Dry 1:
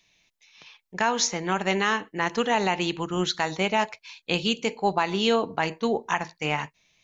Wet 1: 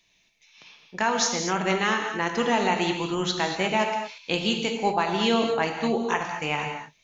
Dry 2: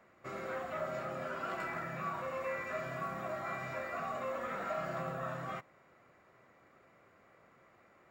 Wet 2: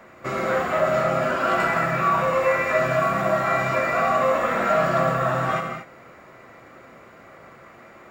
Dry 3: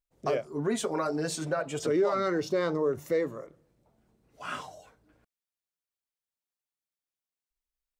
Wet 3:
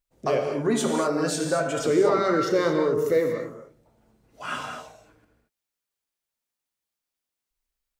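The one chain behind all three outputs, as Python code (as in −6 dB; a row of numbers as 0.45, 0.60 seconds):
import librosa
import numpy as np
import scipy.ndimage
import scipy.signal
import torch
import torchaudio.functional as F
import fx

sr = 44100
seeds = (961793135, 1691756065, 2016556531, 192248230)

y = fx.rev_gated(x, sr, seeds[0], gate_ms=260, shape='flat', drr_db=3.0)
y = librosa.util.normalize(y) * 10.0 ** (-9 / 20.0)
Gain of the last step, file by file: −1.0, +16.0, +4.5 decibels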